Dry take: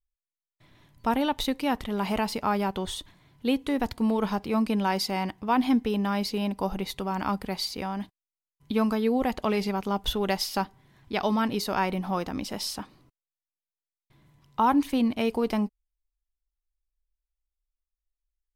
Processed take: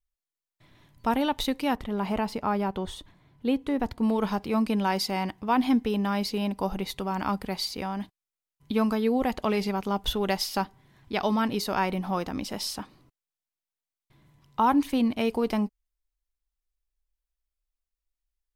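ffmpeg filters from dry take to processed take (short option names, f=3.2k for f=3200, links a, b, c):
-filter_complex "[0:a]asettb=1/sr,asplit=3[a][b][c];[a]atrim=end=1.754[d];[b]atrim=start=1.75:end=4.03,asetpts=PTS-STARTPTS,afade=t=in:d=0.004:c=qsin,afade=t=out:st=2.276:d=0.004:c=qsin,highshelf=f=2.2k:g=-8.5[e];[c]atrim=start=4.026[f];[d][e]acrossfade=d=0.004:c1=hsin:c2=qsin[g];[g][f]acrossfade=d=0.004:c1=qsin:c2=hsin"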